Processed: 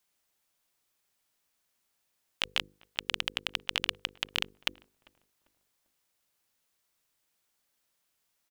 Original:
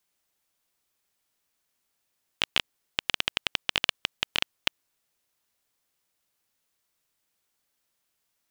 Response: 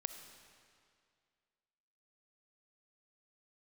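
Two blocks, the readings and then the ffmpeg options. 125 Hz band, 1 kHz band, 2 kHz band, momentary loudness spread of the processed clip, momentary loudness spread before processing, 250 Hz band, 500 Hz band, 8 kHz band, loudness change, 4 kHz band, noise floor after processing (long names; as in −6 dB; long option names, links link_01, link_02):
−4.5 dB, −4.5 dB, −4.5 dB, 5 LU, 5 LU, −4.5 dB, −4.5 dB, −4.5 dB, −4.5 dB, −4.0 dB, −78 dBFS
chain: -filter_complex "[0:a]bandreject=frequency=50:width_type=h:width=6,bandreject=frequency=100:width_type=h:width=6,bandreject=frequency=150:width_type=h:width=6,bandreject=frequency=200:width_type=h:width=6,bandreject=frequency=250:width_type=h:width=6,bandreject=frequency=300:width_type=h:width=6,bandreject=frequency=350:width_type=h:width=6,bandreject=frequency=400:width_type=h:width=6,bandreject=frequency=450:width_type=h:width=6,bandreject=frequency=500:width_type=h:width=6,alimiter=limit=-8.5dB:level=0:latency=1:release=13,asplit=2[link_01][link_02];[link_02]adelay=396,lowpass=frequency=970:poles=1,volume=-22dB,asplit=2[link_03][link_04];[link_04]adelay=396,lowpass=frequency=970:poles=1,volume=0.41,asplit=2[link_05][link_06];[link_06]adelay=396,lowpass=frequency=970:poles=1,volume=0.41[link_07];[link_03][link_05][link_07]amix=inputs=3:normalize=0[link_08];[link_01][link_08]amix=inputs=2:normalize=0"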